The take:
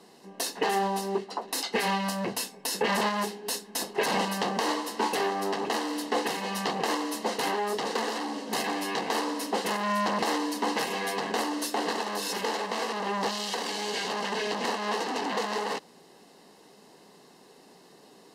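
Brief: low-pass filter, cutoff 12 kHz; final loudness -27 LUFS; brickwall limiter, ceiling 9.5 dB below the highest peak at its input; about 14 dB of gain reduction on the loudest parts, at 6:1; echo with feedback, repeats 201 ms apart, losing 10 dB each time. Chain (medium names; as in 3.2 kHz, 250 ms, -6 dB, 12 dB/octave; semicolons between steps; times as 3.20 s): low-pass 12 kHz; compression 6:1, threshold -39 dBFS; peak limiter -33.5 dBFS; feedback delay 201 ms, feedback 32%, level -10 dB; trim +15.5 dB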